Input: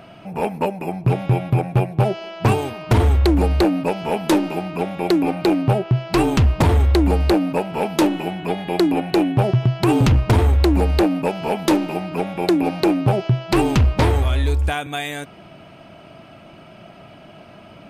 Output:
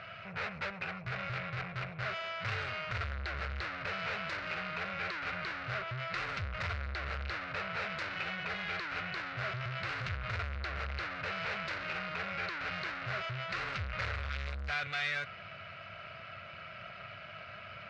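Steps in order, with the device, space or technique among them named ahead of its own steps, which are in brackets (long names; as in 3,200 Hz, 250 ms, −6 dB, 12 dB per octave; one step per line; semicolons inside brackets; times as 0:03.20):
scooped metal amplifier (tube saturation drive 33 dB, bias 0.6; loudspeaker in its box 82–4,000 Hz, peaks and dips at 98 Hz +6 dB, 550 Hz +5 dB, 870 Hz −10 dB, 1,400 Hz +8 dB, 2,100 Hz +4 dB, 3,300 Hz −8 dB; guitar amp tone stack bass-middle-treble 10-0-10)
level +8 dB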